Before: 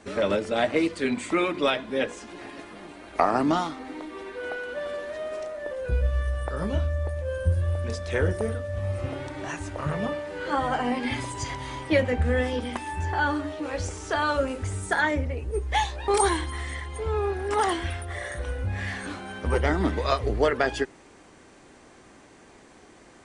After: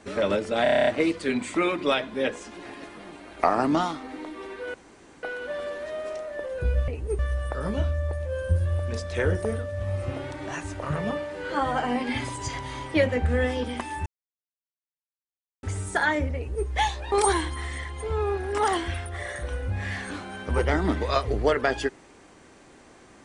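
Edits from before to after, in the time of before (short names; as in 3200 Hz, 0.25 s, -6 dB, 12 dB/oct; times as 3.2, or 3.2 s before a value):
0.63 stutter 0.03 s, 9 plays
4.5 insert room tone 0.49 s
13.02–14.59 mute
15.32–15.63 copy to 6.15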